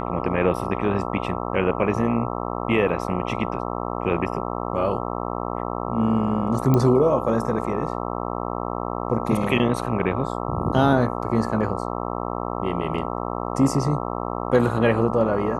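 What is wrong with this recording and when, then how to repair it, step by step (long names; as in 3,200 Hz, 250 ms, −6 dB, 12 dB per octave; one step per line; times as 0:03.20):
mains buzz 60 Hz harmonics 22 −28 dBFS
0:06.74: click −9 dBFS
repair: click removal
hum removal 60 Hz, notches 22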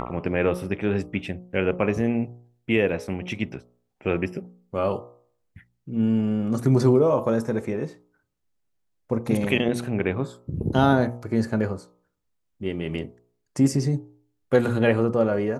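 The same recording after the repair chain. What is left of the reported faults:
none of them is left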